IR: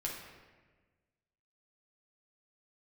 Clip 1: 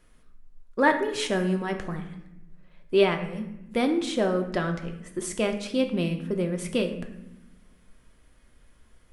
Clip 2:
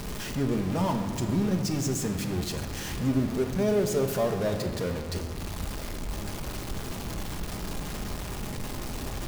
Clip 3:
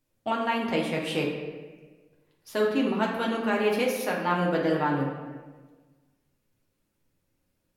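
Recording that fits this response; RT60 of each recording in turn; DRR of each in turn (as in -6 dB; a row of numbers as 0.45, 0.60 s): 3; 0.95, 2.1, 1.4 s; 4.5, 4.5, -3.0 dB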